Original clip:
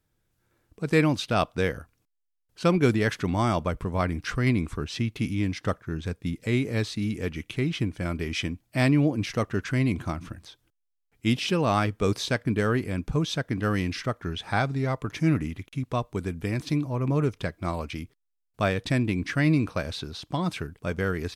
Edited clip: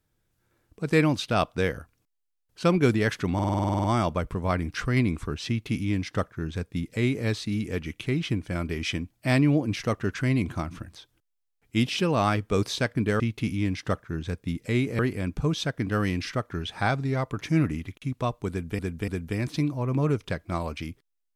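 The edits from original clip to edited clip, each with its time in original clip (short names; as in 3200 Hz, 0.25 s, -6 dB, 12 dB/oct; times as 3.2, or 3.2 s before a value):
3.34 stutter 0.05 s, 11 plays
4.98–6.77 copy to 12.7
16.21–16.5 loop, 3 plays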